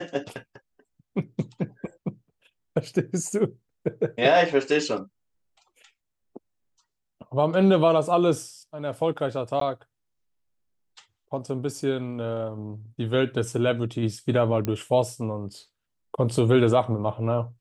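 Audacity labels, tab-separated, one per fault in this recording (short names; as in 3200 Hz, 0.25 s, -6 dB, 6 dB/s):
9.600000	9.610000	gap 13 ms
14.650000	14.650000	pop -14 dBFS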